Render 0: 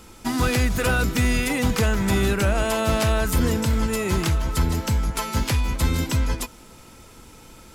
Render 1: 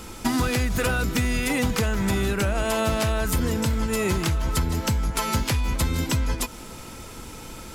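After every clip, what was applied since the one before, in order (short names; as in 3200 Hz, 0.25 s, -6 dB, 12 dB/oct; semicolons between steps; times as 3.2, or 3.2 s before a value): compressor 10:1, threshold -27 dBFS, peak gain reduction 11.5 dB; gain +7 dB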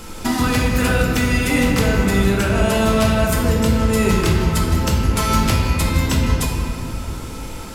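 reverb RT60 2.6 s, pre-delay 7 ms, DRR -1.5 dB; gain +2.5 dB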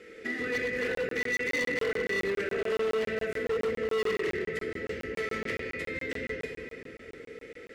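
double band-pass 930 Hz, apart 2.1 oct; overloaded stage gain 26 dB; crackling interface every 0.14 s, samples 1024, zero, from 0.95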